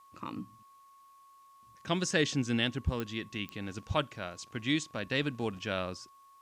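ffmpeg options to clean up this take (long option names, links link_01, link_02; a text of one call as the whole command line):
ffmpeg -i in.wav -af "adeclick=threshold=4,bandreject=frequency=1100:width=30,agate=range=-21dB:threshold=-51dB" out.wav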